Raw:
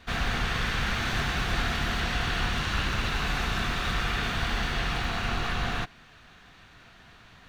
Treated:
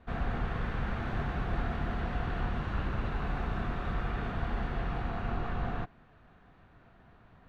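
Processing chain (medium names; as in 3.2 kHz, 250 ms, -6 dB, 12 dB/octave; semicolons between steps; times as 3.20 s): FFT filter 650 Hz 0 dB, 1.2 kHz -5 dB, 5.9 kHz -24 dB; trim -2.5 dB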